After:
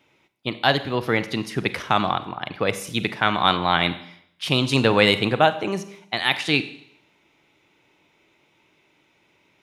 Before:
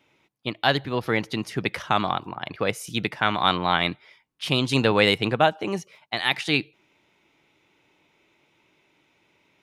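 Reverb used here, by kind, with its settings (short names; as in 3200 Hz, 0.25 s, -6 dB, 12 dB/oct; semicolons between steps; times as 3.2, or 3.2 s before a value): Schroeder reverb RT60 0.71 s, combs from 31 ms, DRR 12 dB; gain +2 dB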